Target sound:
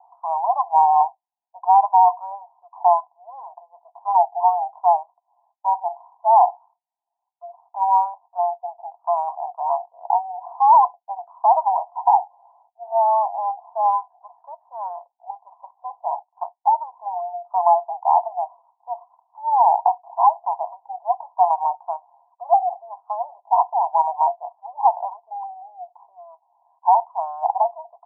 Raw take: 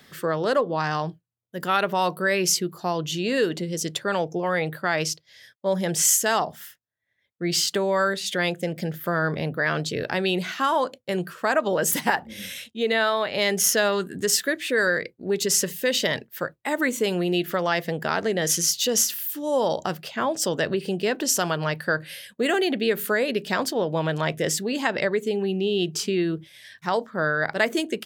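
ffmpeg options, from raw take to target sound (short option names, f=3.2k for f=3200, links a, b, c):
-af "asuperpass=centerf=840:order=12:qfactor=2.6,alimiter=level_in=20.5dB:limit=-1dB:release=50:level=0:latency=1,volume=-4.5dB"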